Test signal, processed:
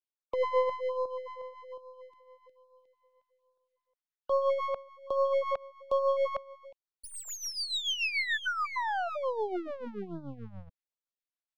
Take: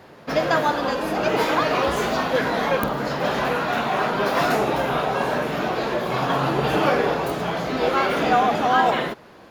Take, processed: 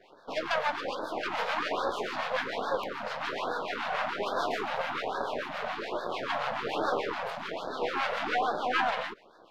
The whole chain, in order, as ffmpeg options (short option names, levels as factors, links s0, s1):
-filter_complex "[0:a]acrossover=split=820[s0][s1];[s0]aeval=exprs='val(0)*(1-0.7/2+0.7/2*cos(2*PI*6.9*n/s))':c=same[s2];[s1]aeval=exprs='val(0)*(1-0.7/2-0.7/2*cos(2*PI*6.9*n/s))':c=same[s3];[s2][s3]amix=inputs=2:normalize=0,aresample=32000,aresample=44100,aeval=exprs='max(val(0),0)':c=same,acrossover=split=310 4900:gain=0.141 1 0.158[s4][s5][s6];[s4][s5][s6]amix=inputs=3:normalize=0,afftfilt=real='re*(1-between(b*sr/1024,300*pow(2500/300,0.5+0.5*sin(2*PI*1.2*pts/sr))/1.41,300*pow(2500/300,0.5+0.5*sin(2*PI*1.2*pts/sr))*1.41))':imag='im*(1-between(b*sr/1024,300*pow(2500/300,0.5+0.5*sin(2*PI*1.2*pts/sr))/1.41,300*pow(2500/300,0.5+0.5*sin(2*PI*1.2*pts/sr))*1.41))':win_size=1024:overlap=0.75"